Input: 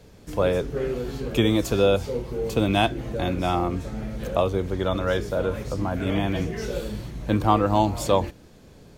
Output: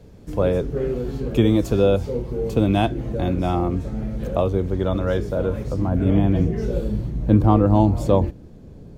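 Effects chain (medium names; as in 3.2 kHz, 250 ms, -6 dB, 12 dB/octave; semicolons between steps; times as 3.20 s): tilt shelf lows +5.5 dB, about 710 Hz, from 5.87 s lows +9.5 dB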